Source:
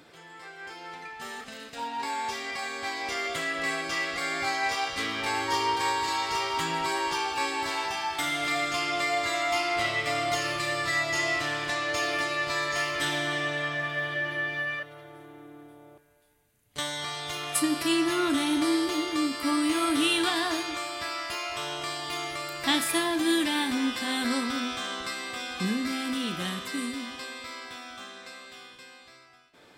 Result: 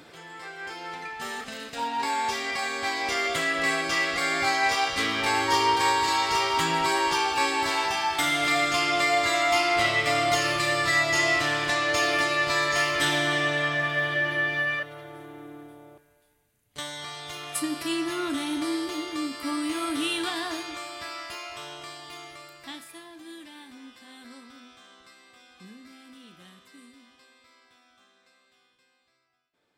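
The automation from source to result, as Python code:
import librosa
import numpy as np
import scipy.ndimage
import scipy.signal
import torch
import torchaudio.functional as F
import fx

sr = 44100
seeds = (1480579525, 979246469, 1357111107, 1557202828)

y = fx.gain(x, sr, db=fx.line((15.52, 4.5), (16.83, -3.5), (21.21, -3.5), (22.44, -10.5), (22.93, -19.0)))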